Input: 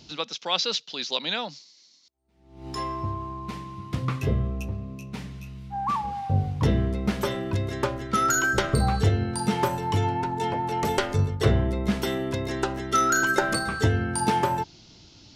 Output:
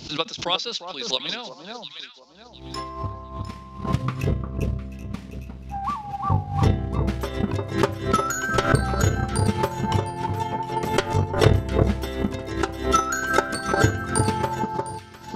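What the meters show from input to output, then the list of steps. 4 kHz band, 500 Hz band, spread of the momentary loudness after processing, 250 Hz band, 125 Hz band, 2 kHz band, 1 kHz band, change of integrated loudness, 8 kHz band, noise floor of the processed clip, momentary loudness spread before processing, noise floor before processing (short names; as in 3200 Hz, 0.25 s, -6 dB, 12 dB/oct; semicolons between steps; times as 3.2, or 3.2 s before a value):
+1.0 dB, +2.5 dB, 14 LU, +1.5 dB, +2.0 dB, 0.0 dB, +1.0 dB, +1.5 dB, 0.0 dB, -44 dBFS, 13 LU, -56 dBFS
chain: echo with dull and thin repeats by turns 0.353 s, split 1300 Hz, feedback 53%, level -2.5 dB; transient shaper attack +11 dB, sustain -4 dB; backwards sustainer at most 110 dB/s; gain -4.5 dB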